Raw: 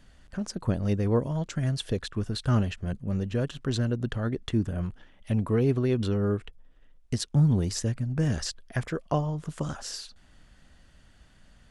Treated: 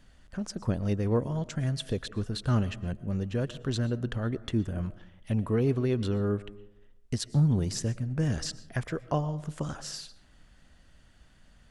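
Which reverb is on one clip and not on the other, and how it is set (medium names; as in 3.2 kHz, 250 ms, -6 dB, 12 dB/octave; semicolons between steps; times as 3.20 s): algorithmic reverb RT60 0.78 s, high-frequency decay 0.35×, pre-delay 80 ms, DRR 17.5 dB; trim -2 dB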